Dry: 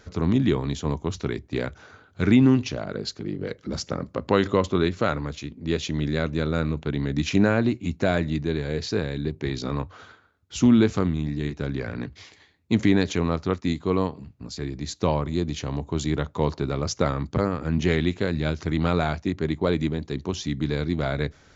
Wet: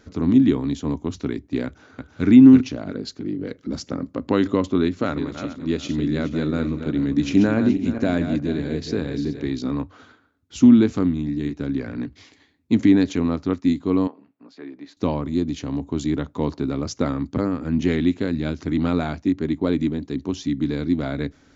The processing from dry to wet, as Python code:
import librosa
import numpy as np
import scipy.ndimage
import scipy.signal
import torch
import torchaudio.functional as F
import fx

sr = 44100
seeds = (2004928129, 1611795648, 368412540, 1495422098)

y = fx.echo_throw(x, sr, start_s=1.65, length_s=0.62, ms=330, feedback_pct=25, wet_db=-3.0)
y = fx.reverse_delay_fb(y, sr, ms=211, feedback_pct=46, wet_db=-8.5, at=(4.82, 9.44))
y = fx.bandpass_edges(y, sr, low_hz=490.0, high_hz=2200.0, at=(14.07, 14.97))
y = fx.peak_eq(y, sr, hz=270.0, db=13.0, octaves=0.51)
y = y * 10.0 ** (-3.0 / 20.0)